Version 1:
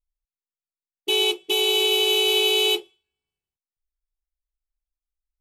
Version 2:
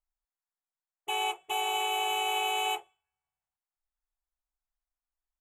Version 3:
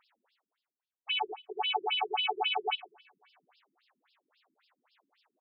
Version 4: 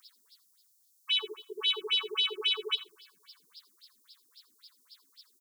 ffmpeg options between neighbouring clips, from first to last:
-af "firequalizer=gain_entry='entry(160,0);entry(280,-19);entry(710,13);entry(1800,7);entry(4800,-26);entry(7100,3);entry(10000,-4)':delay=0.05:min_phase=1,volume=-7dB"
-filter_complex "[0:a]areverse,acompressor=mode=upward:threshold=-38dB:ratio=2.5,areverse,asplit=2[a][b];[b]adelay=105,volume=-21dB,highshelf=f=4k:g=-2.36[c];[a][c]amix=inputs=2:normalize=0,afftfilt=real='re*between(b*sr/1024,240*pow(3900/240,0.5+0.5*sin(2*PI*3.7*pts/sr))/1.41,240*pow(3900/240,0.5+0.5*sin(2*PI*3.7*pts/sr))*1.41)':imag='im*between(b*sr/1024,240*pow(3900/240,0.5+0.5*sin(2*PI*3.7*pts/sr))/1.41,240*pow(3900/240,0.5+0.5*sin(2*PI*3.7*pts/sr))*1.41)':win_size=1024:overlap=0.75,volume=5.5dB"
-af "aexciter=amount=14.1:drive=7.7:freq=4.1k,asuperstop=centerf=690:order=12:qfactor=1.4,aecho=1:1:82:0.133"

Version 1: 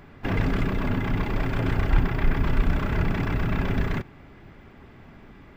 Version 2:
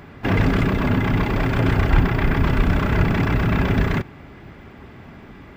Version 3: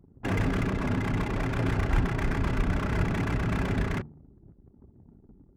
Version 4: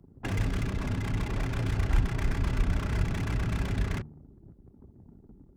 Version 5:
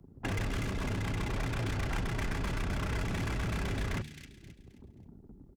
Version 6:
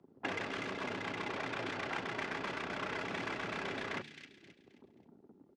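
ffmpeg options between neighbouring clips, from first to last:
-af "highpass=41,volume=7dB"
-af "bandreject=f=75.43:t=h:w=4,bandreject=f=150.86:t=h:w=4,bandreject=f=226.29:t=h:w=4,adynamicsmooth=sensitivity=6:basefreq=960,anlmdn=2.51,volume=-8.5dB"
-filter_complex "[0:a]acrossover=split=120|3000[a][b][c];[b]acompressor=threshold=-36dB:ratio=6[d];[a][d][c]amix=inputs=3:normalize=0,volume=1.5dB"
-filter_complex "[0:a]acrossover=split=410|2000[a][b][c];[a]volume=31.5dB,asoftclip=hard,volume=-31.5dB[d];[c]aecho=1:1:265|530|795|1060:0.531|0.186|0.065|0.0228[e];[d][b][e]amix=inputs=3:normalize=0"
-af "highpass=340,lowpass=4.2k,volume=1dB"

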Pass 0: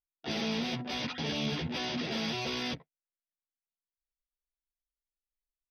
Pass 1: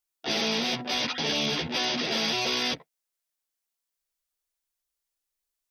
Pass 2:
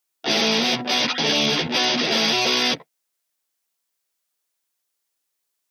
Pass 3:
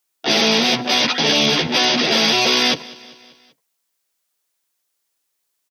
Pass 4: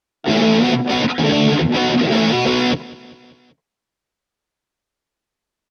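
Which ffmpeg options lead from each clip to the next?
-af "bass=f=250:g=-10,treble=f=4k:g=5,volume=7dB"
-af "highpass=130,volume=7.5dB"
-af "aecho=1:1:195|390|585|780:0.0841|0.048|0.0273|0.0156,volume=4dB"
-af "aemphasis=mode=reproduction:type=riaa"

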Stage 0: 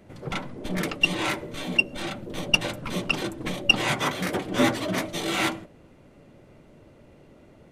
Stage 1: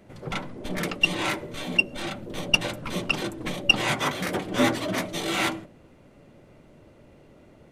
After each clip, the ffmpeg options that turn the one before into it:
-af "bandreject=f=45.78:t=h:w=4,bandreject=f=91.56:t=h:w=4,bandreject=f=137.34:t=h:w=4,bandreject=f=183.12:t=h:w=4,bandreject=f=228.9:t=h:w=4,bandreject=f=274.68:t=h:w=4,bandreject=f=320.46:t=h:w=4,bandreject=f=366.24:t=h:w=4,bandreject=f=412.02:t=h:w=4,bandreject=f=457.8:t=h:w=4"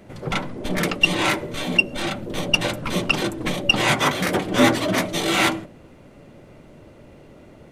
-af "alimiter=level_in=9.5dB:limit=-1dB:release=50:level=0:latency=1,volume=-3dB"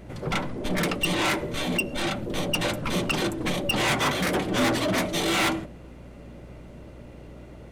-af "asoftclip=type=tanh:threshold=-19dB,aeval=exprs='val(0)+0.00562*(sin(2*PI*60*n/s)+sin(2*PI*2*60*n/s)/2+sin(2*PI*3*60*n/s)/3+sin(2*PI*4*60*n/s)/4+sin(2*PI*5*60*n/s)/5)':c=same"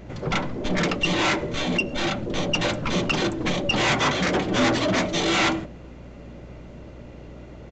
-af "aresample=16000,aresample=44100,volume=2.5dB"

